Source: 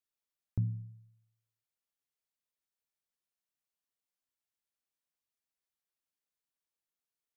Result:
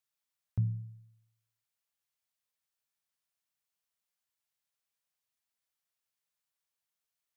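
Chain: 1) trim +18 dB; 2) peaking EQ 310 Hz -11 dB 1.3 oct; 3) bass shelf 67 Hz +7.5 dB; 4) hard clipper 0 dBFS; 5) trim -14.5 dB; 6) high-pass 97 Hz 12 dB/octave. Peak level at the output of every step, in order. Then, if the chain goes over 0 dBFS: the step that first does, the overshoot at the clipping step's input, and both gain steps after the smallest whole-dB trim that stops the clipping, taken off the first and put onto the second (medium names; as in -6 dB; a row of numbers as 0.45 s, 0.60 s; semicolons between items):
-3.5 dBFS, -6.0 dBFS, -2.5 dBFS, -2.5 dBFS, -17.0 dBFS, -21.0 dBFS; nothing clips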